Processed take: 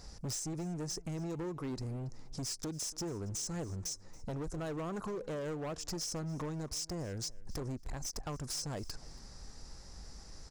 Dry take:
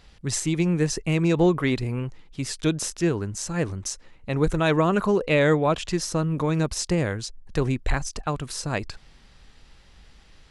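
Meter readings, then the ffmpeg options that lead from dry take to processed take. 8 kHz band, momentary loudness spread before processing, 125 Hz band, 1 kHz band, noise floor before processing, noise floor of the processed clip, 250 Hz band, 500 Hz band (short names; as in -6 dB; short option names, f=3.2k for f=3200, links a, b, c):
-8.0 dB, 11 LU, -14.5 dB, -17.0 dB, -53 dBFS, -52 dBFS, -16.0 dB, -17.5 dB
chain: -filter_complex "[0:a]firequalizer=gain_entry='entry(730,0);entry(3100,-16);entry(5200,9);entry(9800,2)':delay=0.05:min_phase=1,acompressor=threshold=-34dB:ratio=16,asoftclip=type=hard:threshold=-37.5dB,asplit=2[a][b];[b]aecho=0:1:279|558:0.0794|0.0143[c];[a][c]amix=inputs=2:normalize=0,volume=2dB"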